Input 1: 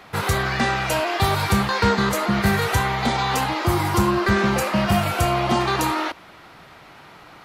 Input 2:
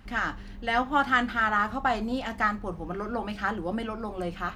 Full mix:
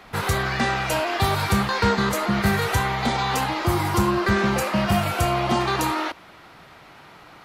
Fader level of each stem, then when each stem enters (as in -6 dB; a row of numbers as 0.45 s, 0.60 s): -1.5 dB, -14.5 dB; 0.00 s, 0.00 s